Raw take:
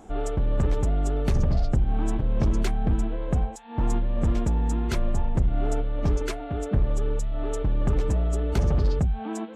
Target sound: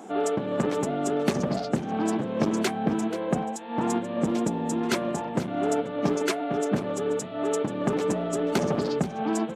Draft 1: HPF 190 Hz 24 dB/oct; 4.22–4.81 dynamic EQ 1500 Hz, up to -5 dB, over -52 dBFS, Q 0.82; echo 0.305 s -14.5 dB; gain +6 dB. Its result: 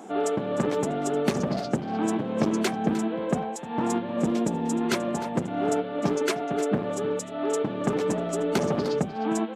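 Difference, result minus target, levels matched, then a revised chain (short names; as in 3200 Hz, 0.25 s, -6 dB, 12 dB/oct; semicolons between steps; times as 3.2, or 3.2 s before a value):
echo 0.178 s early
HPF 190 Hz 24 dB/oct; 4.22–4.81 dynamic EQ 1500 Hz, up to -5 dB, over -52 dBFS, Q 0.82; echo 0.483 s -14.5 dB; gain +6 dB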